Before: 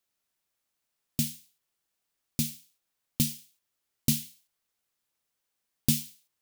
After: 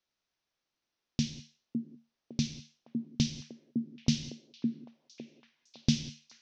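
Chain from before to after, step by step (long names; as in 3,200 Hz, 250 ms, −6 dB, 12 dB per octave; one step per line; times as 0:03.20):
Chebyshev low-pass filter 6,000 Hz, order 5
echo through a band-pass that steps 558 ms, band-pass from 300 Hz, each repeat 0.7 octaves, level 0 dB
reverb whose tail is shaped and stops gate 220 ms flat, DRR 11 dB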